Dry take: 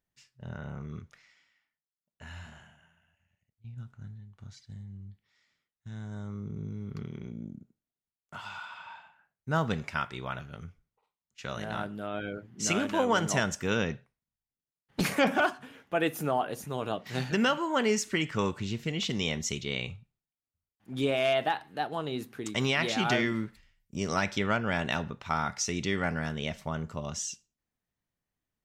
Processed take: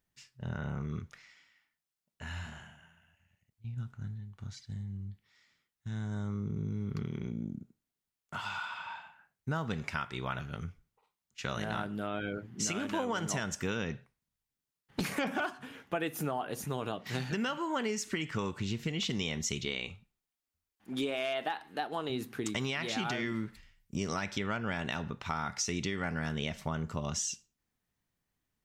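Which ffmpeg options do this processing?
-filter_complex "[0:a]asettb=1/sr,asplit=3[s0][s1][s2];[s0]atrim=end=19.654[s3];[s1]atrim=start=19.65:end=22.1,asetpts=PTS-STARTPTS,afade=t=in:d=0.004:c=qsin,afade=t=out:st=2.446:d=0.004:c=qsin,equalizer=f=120:w=1.7:g=-13.5[s4];[s2]atrim=start=22.096[s5];[s3][s4]acrossfade=d=0.004:c1=hsin:c2=qsin[s6];[s6][s5]acrossfade=d=0.004:c1=qsin:c2=hsin,equalizer=f=590:w=2.3:g=-3,alimiter=limit=0.1:level=0:latency=1:release=478,acompressor=threshold=0.0178:ratio=4,volume=1.58"

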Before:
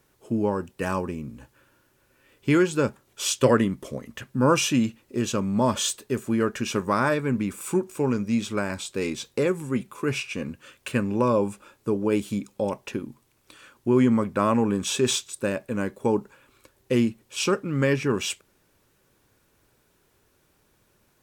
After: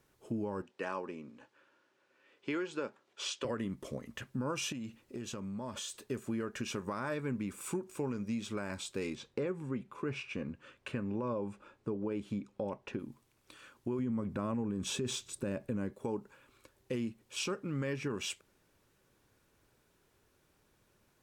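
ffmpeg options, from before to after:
-filter_complex "[0:a]asettb=1/sr,asplit=3[s0][s1][s2];[s0]atrim=end=0.624[s3];[s1]atrim=start=0.62:end=3.45,asetpts=PTS-STARTPTS,afade=t=in:d=0.004:c=qsin,afade=t=out:st=2.826:d=0.004:c=qsin,highpass=330,lowpass=4900[s4];[s2]atrim=start=3.446[s5];[s3][s4]acrossfade=d=0.004:c1=hsin:c2=qsin[s6];[s6][s5]acrossfade=d=0.004:c1=qsin:c2=hsin,asettb=1/sr,asplit=3[s7][s8][s9];[s7]atrim=end=4.724[s10];[s8]atrim=start=4.72:end=6.02,asetpts=PTS-STARTPTS,afade=t=in:d=0.004:c=qsin,afade=t=out:st=1.296:d=0.004:c=qsin,acompressor=threshold=0.0251:ratio=5:attack=3.2:release=140:knee=1:detection=peak[s11];[s9]atrim=start=6.016[s12];[s10][s11]acrossfade=d=0.004:c1=hsin:c2=qsin[s13];[s13][s12]acrossfade=d=0.004:c1=qsin:c2=hsin,asettb=1/sr,asplit=3[s14][s15][s16];[s14]atrim=end=9.154[s17];[s15]atrim=start=9.15:end=12.99,asetpts=PTS-STARTPTS,afade=t=in:d=0.004:c=qsin,afade=t=out:st=3.836:d=0.004:c=qsin,aemphasis=mode=reproduction:type=75fm[s18];[s16]atrim=start=12.986[s19];[s17][s18]acrossfade=d=0.004:c1=hsin:c2=qsin[s20];[s20][s19]acrossfade=d=0.004:c1=qsin:c2=hsin,asettb=1/sr,asplit=3[s21][s22][s23];[s21]atrim=end=13.994[s24];[s22]atrim=start=13.99:end=15.93,asetpts=PTS-STARTPTS,afade=t=in:d=0.004:c=qsin,afade=t=out:st=1.936:d=0.004:c=qsin,lowshelf=f=420:g=10.5[s25];[s23]atrim=start=15.926[s26];[s24][s25]acrossfade=d=0.004:c1=hsin:c2=qsin[s27];[s27][s26]acrossfade=d=0.004:c1=qsin:c2=hsin,highshelf=f=11000:g=-6,alimiter=limit=0.158:level=0:latency=1:release=100,acompressor=threshold=0.0282:ratio=2,volume=0.531"

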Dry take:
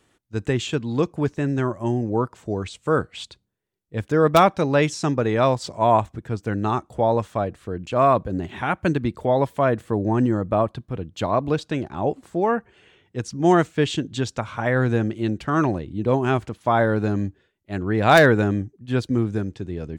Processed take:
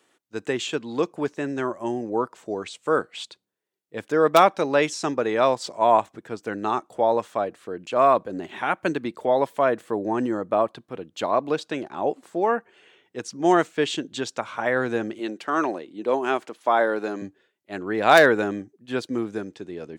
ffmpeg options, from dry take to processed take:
-filter_complex "[0:a]asettb=1/sr,asplit=3[s0][s1][s2];[s0]atrim=end=15.194[s3];[s1]atrim=start=15.19:end=17.22,asetpts=PTS-STARTPTS,afade=t=in:d=0.004:c=qsin,afade=t=out:st=2.026:d=0.004:c=qsin,highpass=260[s4];[s2]atrim=start=17.216[s5];[s3][s4]acrossfade=d=0.004:c1=hsin:c2=qsin[s6];[s6][s5]acrossfade=d=0.004:c1=qsin:c2=hsin,highpass=320"

